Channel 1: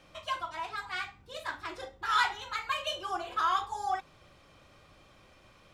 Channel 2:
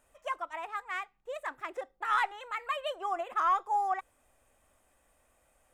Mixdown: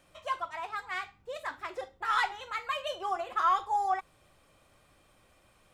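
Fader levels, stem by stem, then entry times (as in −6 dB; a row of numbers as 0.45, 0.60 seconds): −6.5, −0.5 decibels; 0.00, 0.00 seconds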